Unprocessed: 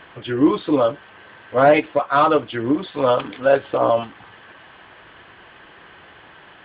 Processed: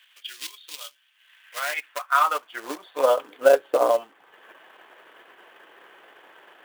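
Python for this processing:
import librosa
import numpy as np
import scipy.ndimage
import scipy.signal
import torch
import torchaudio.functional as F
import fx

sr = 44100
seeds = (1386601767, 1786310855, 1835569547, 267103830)

y = fx.transient(x, sr, attack_db=6, sustain_db=-7)
y = fx.quant_float(y, sr, bits=2)
y = fx.filter_sweep_highpass(y, sr, from_hz=3200.0, to_hz=420.0, start_s=1.14, end_s=3.35, q=1.4)
y = y * librosa.db_to_amplitude(-6.5)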